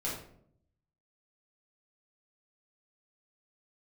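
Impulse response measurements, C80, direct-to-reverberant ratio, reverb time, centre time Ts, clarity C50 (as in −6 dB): 7.5 dB, −7.0 dB, 0.65 s, 42 ms, 3.0 dB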